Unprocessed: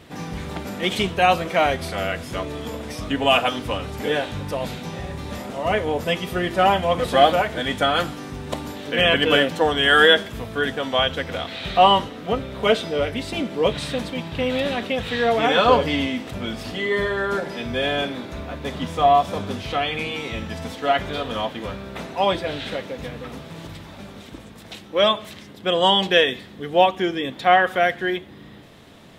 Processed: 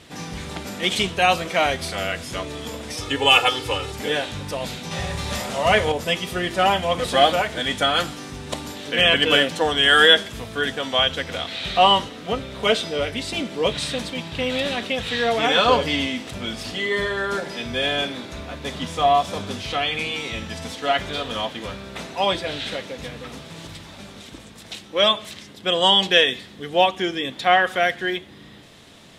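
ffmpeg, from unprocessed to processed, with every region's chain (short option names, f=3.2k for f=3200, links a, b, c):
-filter_complex "[0:a]asettb=1/sr,asplit=3[a][b][c];[a]atrim=end=2.974[d];[b]atrim=start=2.97:end=3.92,asetpts=PTS-STARTPTS,afade=t=in:d=0.004:c=qsin,afade=t=out:st=0.946:d=0.004:c=qsin,highpass=80,aecho=1:1:2.3:0.99,atrim=end_sample=41895[e];[c]atrim=start=3.916[f];[d][e]acrossfade=d=0.004:c1=hsin:c2=qsin[g];[g][f]acrossfade=d=0.004:c1=qsin:c2=hsin,asettb=1/sr,asplit=3[h][i][j];[h]atrim=end=4.914[k];[i]atrim=start=4.91:end=5.92,asetpts=PTS-STARTPTS,afade=t=in:d=0.004:c=qsin,afade=t=out:st=1.006:d=0.004:c=qsin,equalizer=f=310:t=o:w=0.61:g=-7,bandreject=f=50:t=h:w=6,bandreject=f=100:t=h:w=6,bandreject=f=150:t=h:w=6,bandreject=f=200:t=h:w=6,bandreject=f=250:t=h:w=6,bandreject=f=300:t=h:w=6,bandreject=f=350:t=h:w=6,bandreject=f=400:t=h:w=6,bandreject=f=450:t=h:w=6,bandreject=f=500:t=h:w=6,acontrast=72[l];[j]atrim=start=5.916[m];[k][l]acrossfade=d=0.004:c1=hsin:c2=qsin[n];[n][m]acrossfade=d=0.004:c1=qsin:c2=hsin,lowpass=10k,highshelf=f=2.8k:g=10.5,volume=-2.5dB"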